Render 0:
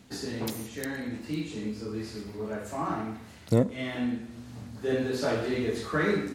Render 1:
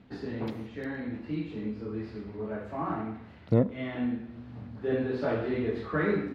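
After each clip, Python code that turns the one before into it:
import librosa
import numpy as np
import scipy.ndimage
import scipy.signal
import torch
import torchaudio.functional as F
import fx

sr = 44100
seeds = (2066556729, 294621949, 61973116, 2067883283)

y = fx.air_absorb(x, sr, metres=370.0)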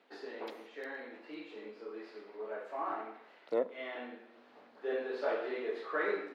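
y = scipy.signal.sosfilt(scipy.signal.butter(4, 410.0, 'highpass', fs=sr, output='sos'), x)
y = y * 10.0 ** (-2.5 / 20.0)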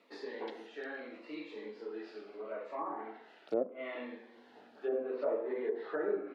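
y = fx.env_lowpass_down(x, sr, base_hz=830.0, full_db=-32.0)
y = fx.notch_cascade(y, sr, direction='falling', hz=0.76)
y = y * 10.0 ** (3.0 / 20.0)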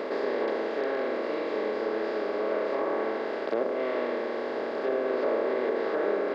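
y = fx.bin_compress(x, sr, power=0.2)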